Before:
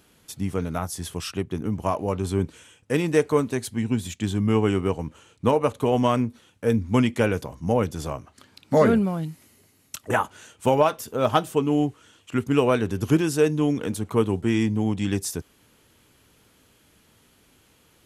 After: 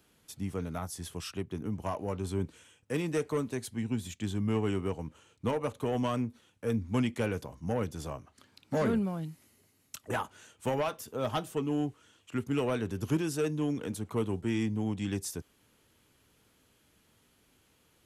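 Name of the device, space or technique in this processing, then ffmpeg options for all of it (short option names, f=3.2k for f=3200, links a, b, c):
one-band saturation: -filter_complex "[0:a]acrossover=split=240|2500[a][b][c];[b]asoftclip=type=tanh:threshold=-18dB[d];[a][d][c]amix=inputs=3:normalize=0,volume=-8dB"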